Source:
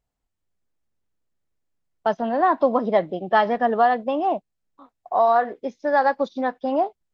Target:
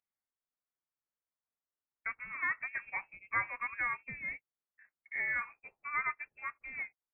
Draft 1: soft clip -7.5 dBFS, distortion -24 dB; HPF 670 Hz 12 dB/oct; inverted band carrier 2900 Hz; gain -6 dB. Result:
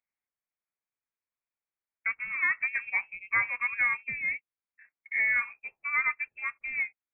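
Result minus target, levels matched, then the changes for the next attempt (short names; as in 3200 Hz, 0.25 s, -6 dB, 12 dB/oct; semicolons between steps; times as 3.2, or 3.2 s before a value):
500 Hz band -7.5 dB
change: HPF 1400 Hz 12 dB/oct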